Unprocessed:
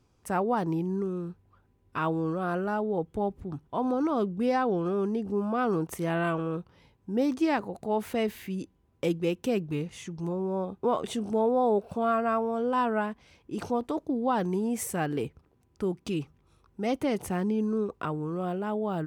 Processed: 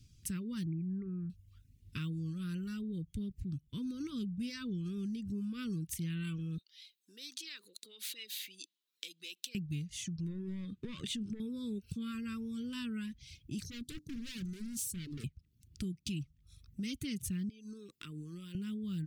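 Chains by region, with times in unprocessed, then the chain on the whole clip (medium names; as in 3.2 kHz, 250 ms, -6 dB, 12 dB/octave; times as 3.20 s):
0.65–1.30 s: steep low-pass 2.3 kHz 96 dB/octave + peaking EQ 1.2 kHz +4 dB 2.3 oct
6.58–9.55 s: peaking EQ 3.9 kHz +8.5 dB 0.44 oct + compression 5:1, threshold -35 dBFS + high-pass 480 Hz 24 dB/octave
10.16–11.40 s: band-stop 5.6 kHz, Q 26 + compression 10:1, threshold -27 dBFS + overdrive pedal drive 16 dB, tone 1.5 kHz, clips at -18 dBFS
13.62–15.24 s: Chebyshev band-stop 750–4400 Hz + hum notches 50/100/150/200/250/300 Hz + overload inside the chain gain 35.5 dB
17.49–18.55 s: high-pass 320 Hz + compression 4:1, threshold -36 dBFS
whole clip: Chebyshev band-stop 150–3600 Hz, order 2; reverb removal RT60 0.63 s; compression 2.5:1, threshold -50 dBFS; trim +9.5 dB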